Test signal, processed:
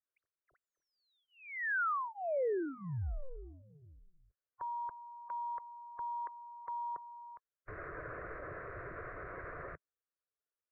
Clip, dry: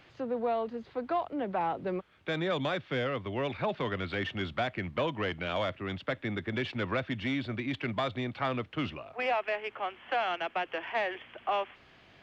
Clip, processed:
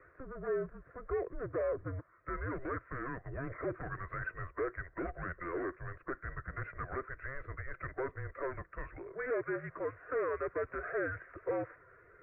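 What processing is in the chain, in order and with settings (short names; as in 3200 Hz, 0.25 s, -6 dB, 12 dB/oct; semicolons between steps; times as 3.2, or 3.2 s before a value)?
bin magnitudes rounded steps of 15 dB; soft clip -31.5 dBFS; mistuned SSB -270 Hz 340–2100 Hz; fixed phaser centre 850 Hz, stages 6; gain +3.5 dB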